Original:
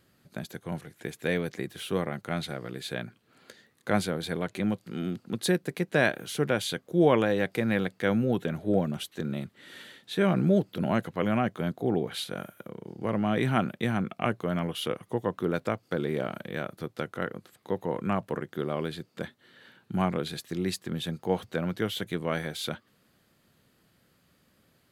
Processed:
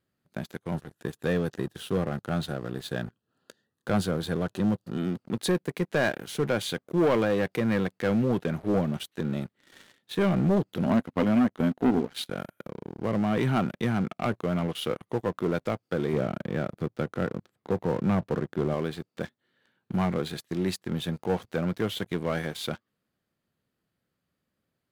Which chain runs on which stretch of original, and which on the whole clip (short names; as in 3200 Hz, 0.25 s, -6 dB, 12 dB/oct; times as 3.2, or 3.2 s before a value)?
0.74–4.98 Butterworth band-stop 2200 Hz, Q 3.3 + low shelf 120 Hz +6.5 dB
10.86–12.3 HPF 110 Hz 6 dB/oct + bell 250 Hz +11.5 dB 0.25 oct + transient shaper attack +8 dB, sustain -6 dB
16.13–18.74 HPF 71 Hz + tilt -2 dB/oct
whole clip: high shelf 2500 Hz -4.5 dB; sample leveller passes 3; gain -8.5 dB